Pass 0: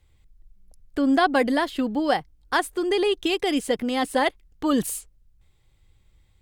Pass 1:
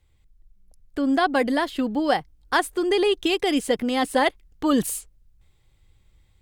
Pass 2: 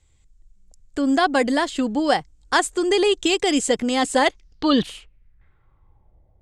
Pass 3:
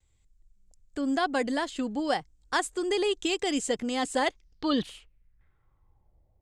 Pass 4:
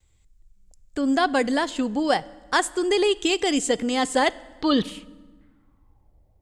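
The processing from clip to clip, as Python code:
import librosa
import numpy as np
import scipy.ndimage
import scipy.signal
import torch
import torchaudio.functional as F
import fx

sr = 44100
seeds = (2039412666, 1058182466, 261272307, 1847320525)

y1 = fx.rider(x, sr, range_db=10, speed_s=2.0)
y1 = y1 * librosa.db_to_amplitude(1.0)
y2 = fx.filter_sweep_lowpass(y1, sr, from_hz=7400.0, to_hz=660.0, start_s=4.23, end_s=6.21, q=4.4)
y2 = y2 * librosa.db_to_amplitude(2.0)
y3 = fx.vibrato(y2, sr, rate_hz=0.47, depth_cents=20.0)
y3 = y3 * librosa.db_to_amplitude(-8.5)
y4 = fx.rev_fdn(y3, sr, rt60_s=1.4, lf_ratio=1.3, hf_ratio=0.75, size_ms=31.0, drr_db=19.0)
y4 = y4 * librosa.db_to_amplitude(6.0)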